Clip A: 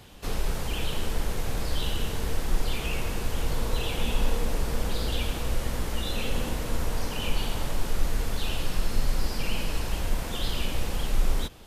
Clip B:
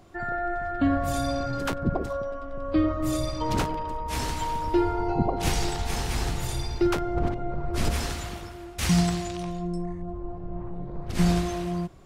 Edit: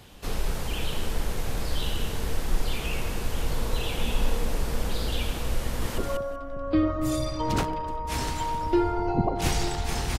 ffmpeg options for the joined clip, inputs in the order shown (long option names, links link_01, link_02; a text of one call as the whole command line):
ffmpeg -i cue0.wav -i cue1.wav -filter_complex "[0:a]apad=whole_dur=10.18,atrim=end=10.18,atrim=end=5.982[link_01];[1:a]atrim=start=1.988:end=6.19[link_02];[link_01][link_02]acrossfade=duration=0.004:curve1=hsin:curve2=hsin,asplit=2[link_03][link_04];[link_04]afade=type=in:start_time=5.62:duration=0.01,afade=type=out:start_time=5.98:duration=0.01,aecho=0:1:190|380|570:0.749894|0.112484|0.0168726[link_05];[link_03][link_05]amix=inputs=2:normalize=0" out.wav